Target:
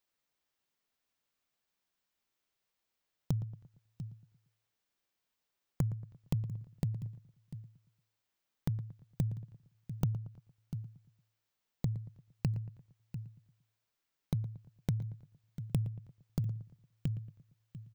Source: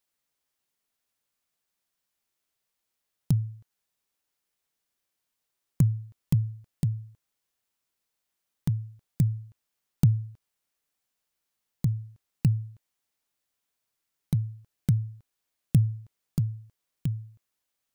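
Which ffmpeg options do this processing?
ffmpeg -i in.wav -filter_complex "[0:a]equalizer=frequency=11000:width_type=o:width=1:gain=-9.5,asplit=2[link_01][link_02];[link_02]aecho=0:1:695:0.119[link_03];[link_01][link_03]amix=inputs=2:normalize=0,acompressor=threshold=-31dB:ratio=3,asplit=2[link_04][link_05];[link_05]adelay=115,lowpass=frequency=1900:poles=1,volume=-14.5dB,asplit=2[link_06][link_07];[link_07]adelay=115,lowpass=frequency=1900:poles=1,volume=0.45,asplit=2[link_08][link_09];[link_09]adelay=115,lowpass=frequency=1900:poles=1,volume=0.45,asplit=2[link_10][link_11];[link_11]adelay=115,lowpass=frequency=1900:poles=1,volume=0.45[link_12];[link_06][link_08][link_10][link_12]amix=inputs=4:normalize=0[link_13];[link_04][link_13]amix=inputs=2:normalize=0,volume=-1dB" out.wav

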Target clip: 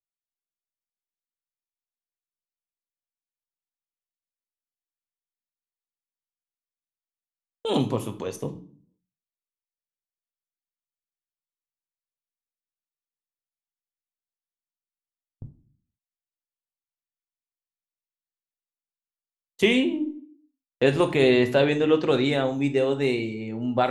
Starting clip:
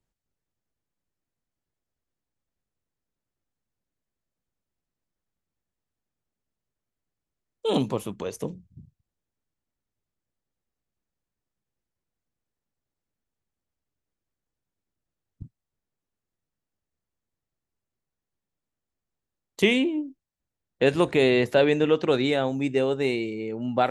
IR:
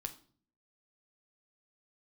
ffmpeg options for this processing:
-filter_complex "[0:a]agate=range=-32dB:threshold=-40dB:ratio=16:detection=peak[link_01];[1:a]atrim=start_sample=2205[link_02];[link_01][link_02]afir=irnorm=-1:irlink=0,volume=2.5dB"

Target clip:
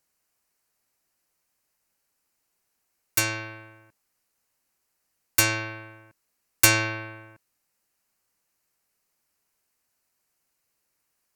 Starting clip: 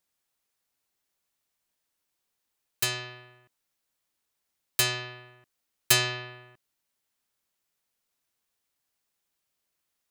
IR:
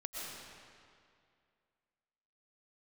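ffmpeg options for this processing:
-af "equalizer=frequency=3900:width=4.3:gain=-11,asetrate=39249,aresample=44100,volume=5dB"

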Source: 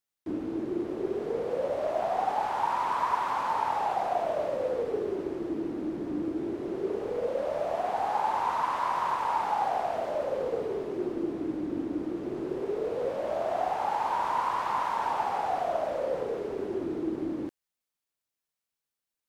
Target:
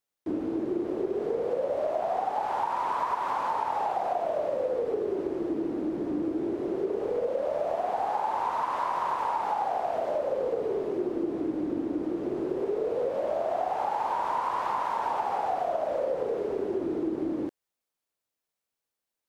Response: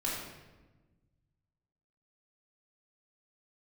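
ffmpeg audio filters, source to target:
-af "equalizer=frequency=530:width_type=o:width=1.9:gain=5.5,acompressor=threshold=-25dB:ratio=6"

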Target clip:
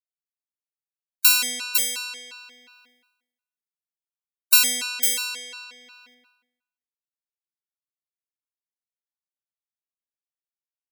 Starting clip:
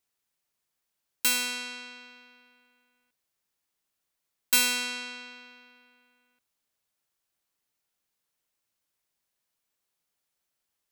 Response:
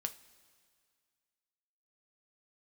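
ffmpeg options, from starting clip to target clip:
-af "asetnsamples=nb_out_samples=441:pad=0,asendcmd='5.64 highshelf g 3',highshelf=frequency=3900:gain=10.5,agate=range=-33dB:threshold=-53dB:ratio=3:detection=peak,dynaudnorm=framelen=250:gausssize=5:maxgain=3.5dB,aecho=1:1:504:0.531,afftfilt=real='re*gt(sin(2*PI*2.8*pts/sr)*(1-2*mod(floor(b*sr/1024/760),2)),0)':imag='im*gt(sin(2*PI*2.8*pts/sr)*(1-2*mod(floor(b*sr/1024/760),2)),0)':win_size=1024:overlap=0.75,volume=3.5dB"

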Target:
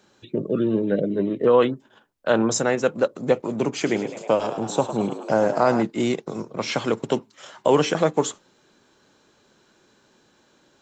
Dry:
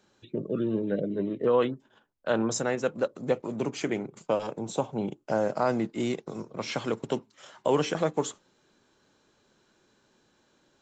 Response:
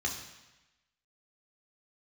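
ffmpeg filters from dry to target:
-filter_complex "[0:a]lowshelf=frequency=82:gain=-5.5,asettb=1/sr,asplit=3[link_01][link_02][link_03];[link_01]atrim=end=3.754[link_04];[link_02]atrim=start=3.75:end=5.83,asetpts=PTS-STARTPTS,afade=type=in:duration=0.004:curve=qsin,afade=type=out:start_time=2.076:duration=0.004:curve=qsin,asplit=9[link_05][link_06][link_07][link_08][link_09][link_10][link_11][link_12][link_13];[link_06]adelay=105,afreqshift=73,volume=-11.5dB[link_14];[link_07]adelay=210,afreqshift=146,volume=-15.4dB[link_15];[link_08]adelay=315,afreqshift=219,volume=-19.3dB[link_16];[link_09]adelay=420,afreqshift=292,volume=-23.1dB[link_17];[link_10]adelay=525,afreqshift=365,volume=-27dB[link_18];[link_11]adelay=630,afreqshift=438,volume=-30.9dB[link_19];[link_12]adelay=735,afreqshift=511,volume=-34.8dB[link_20];[link_13]adelay=840,afreqshift=584,volume=-38.6dB[link_21];[link_05][link_14][link_15][link_16][link_17][link_18][link_19][link_20][link_21]amix=inputs=9:normalize=0,atrim=end_sample=91728[link_22];[link_03]atrim=start=5.826[link_23];[link_04][link_22]acrossfade=duration=0.004:curve1=hsin:curve2=qsin[link_24];[link_24][link_23]acrossfade=duration=0.004:curve1=qsin:curve2=hsin,volume=7dB"

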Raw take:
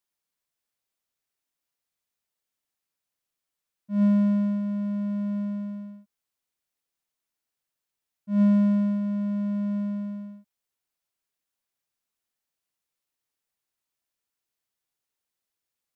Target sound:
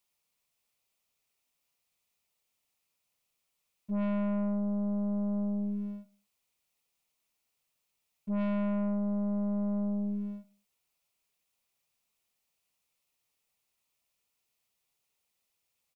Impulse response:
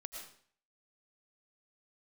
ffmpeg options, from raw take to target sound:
-filter_complex "[0:a]aeval=exprs='(tanh(50.1*val(0)+0.25)-tanh(0.25))/50.1':channel_layout=same,equalizer=frequency=315:width_type=o:width=0.33:gain=-6,equalizer=frequency=1600:width_type=o:width=0.33:gain=-9,equalizer=frequency=2500:width_type=o:width=0.33:gain=5,asplit=2[link_01][link_02];[link_02]adelay=70,lowpass=frequency=2000:poles=1,volume=-16.5dB,asplit=2[link_03][link_04];[link_04]adelay=70,lowpass=frequency=2000:poles=1,volume=0.39,asplit=2[link_05][link_06];[link_06]adelay=70,lowpass=frequency=2000:poles=1,volume=0.39[link_07];[link_01][link_03][link_05][link_07]amix=inputs=4:normalize=0,volume=5.5dB"

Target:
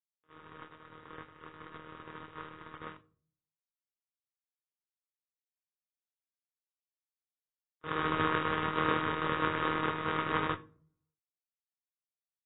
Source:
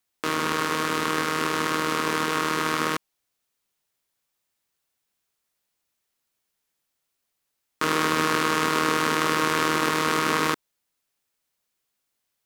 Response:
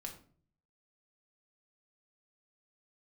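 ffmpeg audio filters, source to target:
-filter_complex "[0:a]agate=range=-51dB:threshold=-20dB:ratio=16:detection=peak,equalizer=frequency=100:width_type=o:width=0.67:gain=10,equalizer=frequency=250:width_type=o:width=0.67:gain=-9,equalizer=frequency=2500:width_type=o:width=0.67:gain=-5,equalizer=frequency=6300:width_type=o:width=0.67:gain=-4,asplit=2[link_01][link_02];[1:a]atrim=start_sample=2205,lowshelf=frequency=390:gain=4[link_03];[link_02][link_03]afir=irnorm=-1:irlink=0,volume=-6.5dB[link_04];[link_01][link_04]amix=inputs=2:normalize=0" -ar 16000 -c:a aac -b:a 16k

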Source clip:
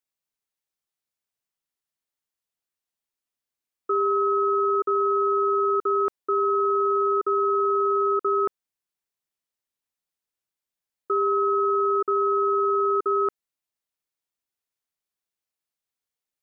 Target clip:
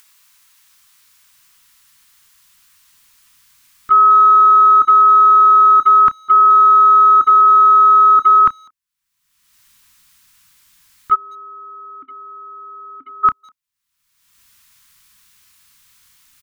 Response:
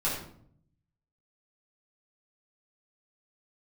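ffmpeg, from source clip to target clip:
-filter_complex "[0:a]asplit=2[link_01][link_02];[link_02]adelay=30,volume=-13dB[link_03];[link_01][link_03]amix=inputs=2:normalize=0,agate=range=-17dB:threshold=-24dB:ratio=16:detection=peak,firequalizer=gain_entry='entry(270,0);entry(430,-22);entry(1000,13)':delay=0.05:min_phase=1,acompressor=mode=upward:threshold=-33dB:ratio=2.5,asubboost=boost=5.5:cutoff=200,asplit=3[link_04][link_05][link_06];[link_04]afade=type=out:start_time=11.14:duration=0.02[link_07];[link_05]asplit=3[link_08][link_09][link_10];[link_08]bandpass=frequency=270:width_type=q:width=8,volume=0dB[link_11];[link_09]bandpass=frequency=2290:width_type=q:width=8,volume=-6dB[link_12];[link_10]bandpass=frequency=3010:width_type=q:width=8,volume=-9dB[link_13];[link_11][link_12][link_13]amix=inputs=3:normalize=0,afade=type=in:start_time=11.14:duration=0.02,afade=type=out:start_time=13.23:duration=0.02[link_14];[link_06]afade=type=in:start_time=13.23:duration=0.02[link_15];[link_07][link_14][link_15]amix=inputs=3:normalize=0,asplit=2[link_16][link_17];[link_17]adelay=200,highpass=300,lowpass=3400,asoftclip=type=hard:threshold=-20.5dB,volume=-28dB[link_18];[link_16][link_18]amix=inputs=2:normalize=0,volume=6dB"

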